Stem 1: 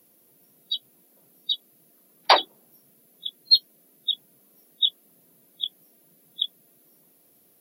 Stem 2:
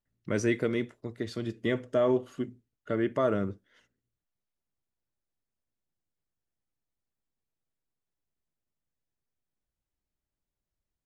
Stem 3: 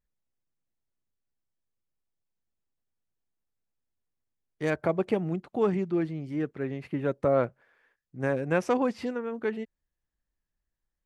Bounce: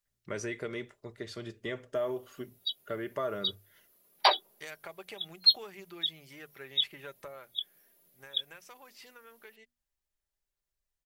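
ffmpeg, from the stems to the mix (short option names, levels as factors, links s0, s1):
-filter_complex "[0:a]adelay=1950,volume=0.473[s0];[1:a]acompressor=threshold=0.0501:ratio=6,volume=0.841[s1];[2:a]tiltshelf=f=1500:g=-10,bandreject=f=60:t=h:w=6,bandreject=f=120:t=h:w=6,bandreject=f=180:t=h:w=6,bandreject=f=240:t=h:w=6,acompressor=threshold=0.0141:ratio=6,volume=0.75,afade=t=out:st=7.14:d=0.48:silence=0.421697[s2];[s0][s1][s2]amix=inputs=3:normalize=0,equalizer=f=220:w=1.1:g=-11.5,bandreject=f=50:t=h:w=6,bandreject=f=100:t=h:w=6,bandreject=f=150:t=h:w=6,aecho=1:1:5:0.31"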